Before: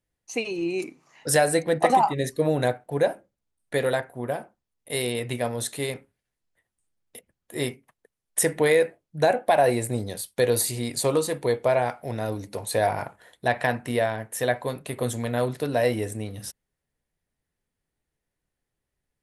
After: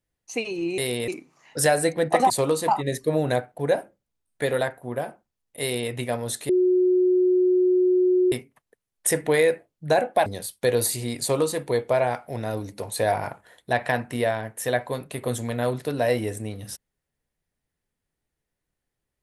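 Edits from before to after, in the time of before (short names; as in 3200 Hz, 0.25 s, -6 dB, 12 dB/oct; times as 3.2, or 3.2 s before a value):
4.93–5.23 copy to 0.78
5.81–7.64 bleep 365 Hz -16 dBFS
9.58–10.01 cut
10.96–11.34 copy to 2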